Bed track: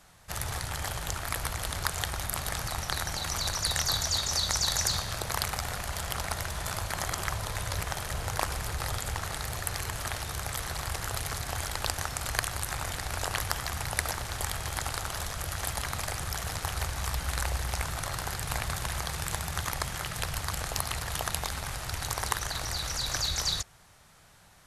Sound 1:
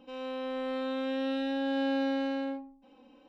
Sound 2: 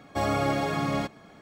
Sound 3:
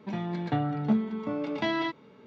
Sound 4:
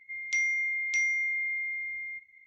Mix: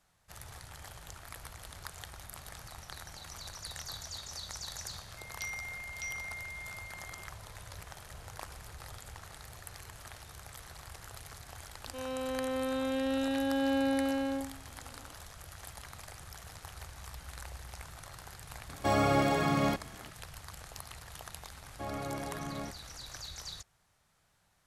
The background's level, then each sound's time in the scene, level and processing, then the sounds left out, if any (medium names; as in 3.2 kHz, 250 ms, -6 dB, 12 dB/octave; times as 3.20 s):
bed track -14.5 dB
5.08 s: add 4 -5.5 dB + steep high-pass 2.4 kHz
11.86 s: add 1
18.69 s: add 2 -1 dB
21.64 s: add 2 -12 dB + distance through air 200 m
not used: 3